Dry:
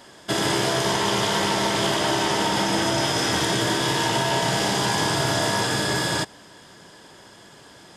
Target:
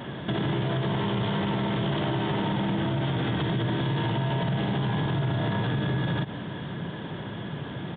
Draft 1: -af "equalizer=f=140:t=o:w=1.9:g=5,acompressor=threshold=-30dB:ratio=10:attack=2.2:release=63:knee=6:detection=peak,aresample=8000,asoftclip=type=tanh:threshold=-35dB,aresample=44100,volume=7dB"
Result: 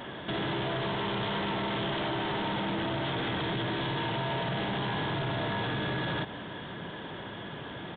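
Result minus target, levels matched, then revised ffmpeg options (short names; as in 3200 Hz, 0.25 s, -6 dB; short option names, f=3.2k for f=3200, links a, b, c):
soft clip: distortion +15 dB; 125 Hz band -5.0 dB
-af "equalizer=f=140:t=o:w=1.9:g=16,acompressor=threshold=-30dB:ratio=10:attack=2.2:release=63:knee=6:detection=peak,aresample=8000,asoftclip=type=tanh:threshold=-23.5dB,aresample=44100,volume=7dB"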